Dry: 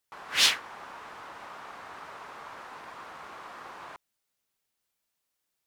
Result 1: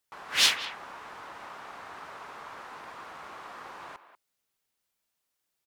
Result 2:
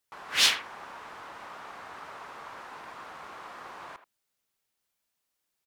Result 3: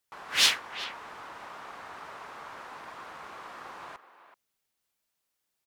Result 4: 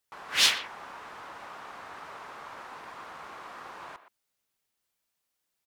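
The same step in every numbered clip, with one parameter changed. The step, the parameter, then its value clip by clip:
speakerphone echo, time: 190, 80, 380, 120 ms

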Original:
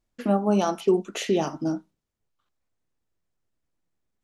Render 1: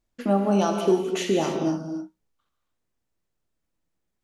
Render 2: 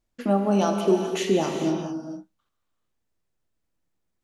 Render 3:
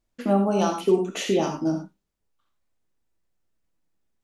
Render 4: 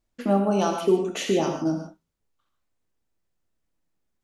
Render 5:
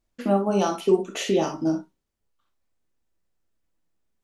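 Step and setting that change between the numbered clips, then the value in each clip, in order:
non-linear reverb, gate: 320, 480, 120, 180, 80 ms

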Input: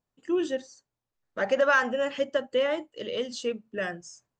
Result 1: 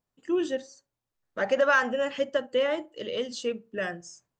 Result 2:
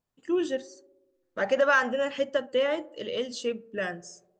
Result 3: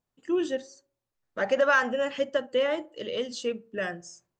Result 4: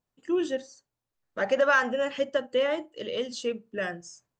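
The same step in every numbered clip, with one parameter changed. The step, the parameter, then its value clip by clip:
tape echo, feedback: 36, 82, 53, 23%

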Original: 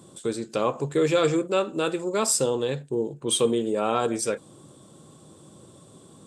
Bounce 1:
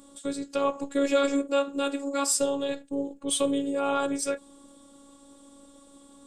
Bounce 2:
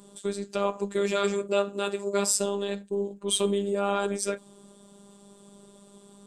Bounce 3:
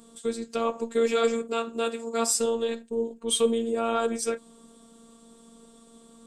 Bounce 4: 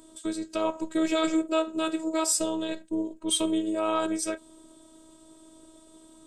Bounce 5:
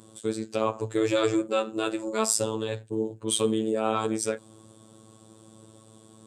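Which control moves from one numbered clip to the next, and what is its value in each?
robotiser, frequency: 280, 200, 230, 320, 110 Hz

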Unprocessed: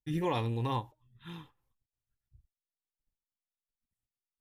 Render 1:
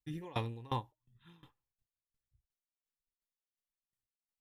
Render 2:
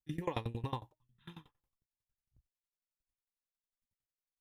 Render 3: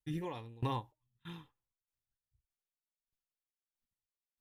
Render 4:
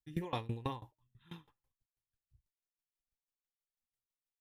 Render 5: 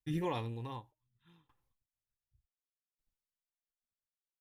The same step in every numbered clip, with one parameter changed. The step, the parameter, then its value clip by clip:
dB-ramp tremolo, rate: 2.8, 11, 1.6, 6.1, 0.67 Hz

